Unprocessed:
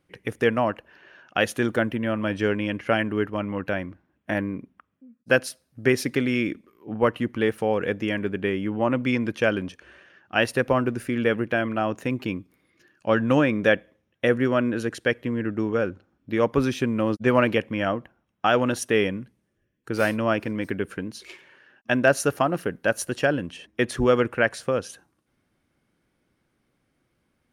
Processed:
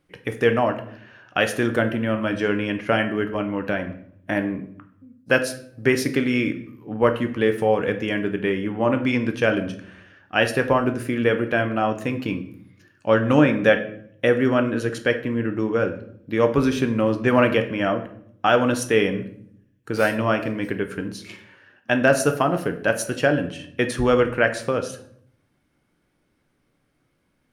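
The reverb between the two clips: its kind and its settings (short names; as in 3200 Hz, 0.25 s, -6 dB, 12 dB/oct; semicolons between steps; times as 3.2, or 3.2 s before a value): shoebox room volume 110 m³, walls mixed, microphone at 0.39 m; gain +1.5 dB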